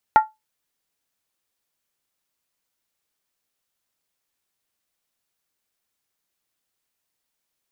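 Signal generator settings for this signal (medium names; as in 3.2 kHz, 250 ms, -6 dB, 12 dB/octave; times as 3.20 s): skin hit, lowest mode 868 Hz, decay 0.19 s, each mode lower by 9.5 dB, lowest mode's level -5.5 dB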